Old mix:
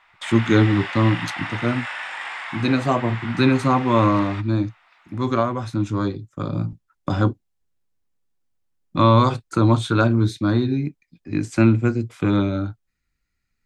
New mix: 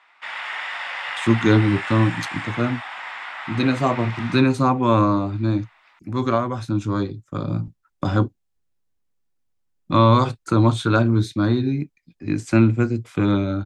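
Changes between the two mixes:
speech: entry +0.95 s; background: send +9.5 dB

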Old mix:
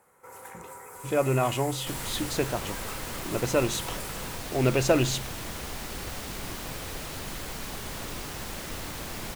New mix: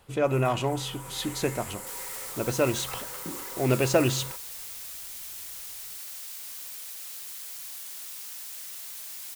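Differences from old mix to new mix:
speech: entry -0.95 s; second sound: add differentiator

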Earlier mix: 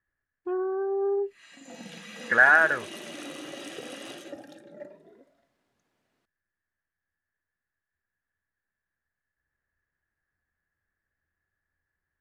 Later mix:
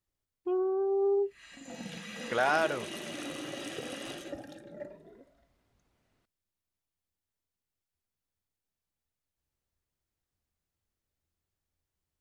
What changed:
speech: remove resonant low-pass 1.7 kHz, resonance Q 16; background: remove high-pass 180 Hz 12 dB/octave

